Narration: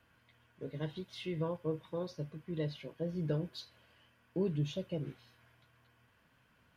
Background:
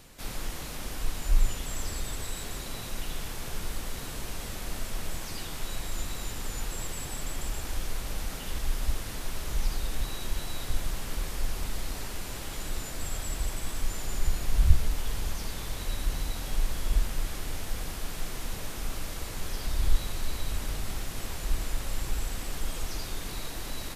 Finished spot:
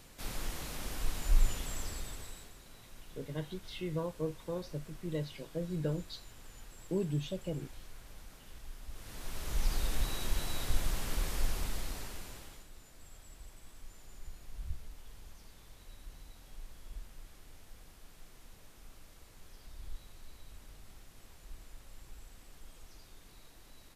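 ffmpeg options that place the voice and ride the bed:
-filter_complex "[0:a]adelay=2550,volume=0dB[a];[1:a]volume=13dB,afade=t=out:st=1.55:d=0.99:silence=0.188365,afade=t=in:st=8.9:d=0.9:silence=0.149624,afade=t=out:st=11.41:d=1.26:silence=0.112202[b];[a][b]amix=inputs=2:normalize=0"

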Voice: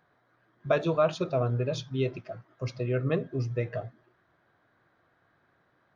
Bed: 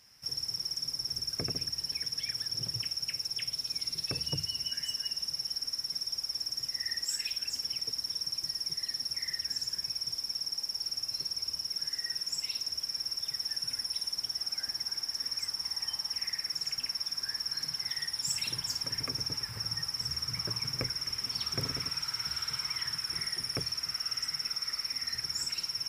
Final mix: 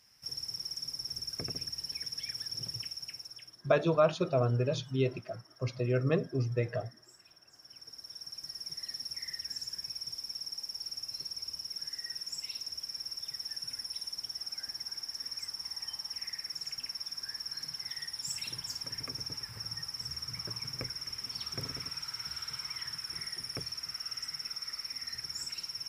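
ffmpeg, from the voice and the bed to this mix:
-filter_complex "[0:a]adelay=3000,volume=-1dB[a];[1:a]volume=16.5dB,afade=t=out:st=2.7:d=0.92:silence=0.0841395,afade=t=in:st=7.52:d=1.42:silence=0.0944061[b];[a][b]amix=inputs=2:normalize=0"

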